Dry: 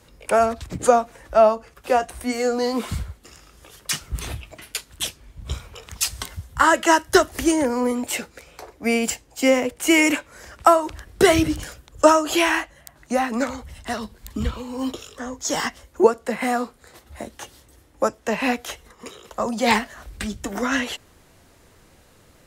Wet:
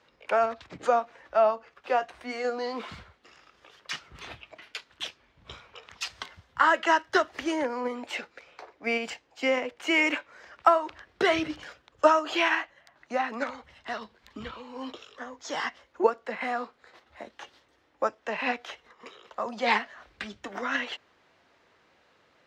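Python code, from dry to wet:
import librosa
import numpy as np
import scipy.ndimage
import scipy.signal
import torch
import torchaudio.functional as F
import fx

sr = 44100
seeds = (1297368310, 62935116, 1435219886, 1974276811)

p1 = fx.level_steps(x, sr, step_db=10)
p2 = x + (p1 * librosa.db_to_amplitude(-2.0))
p3 = fx.highpass(p2, sr, hz=930.0, slope=6)
p4 = fx.air_absorb(p3, sr, metres=220.0)
y = p4 * librosa.db_to_amplitude(-4.5)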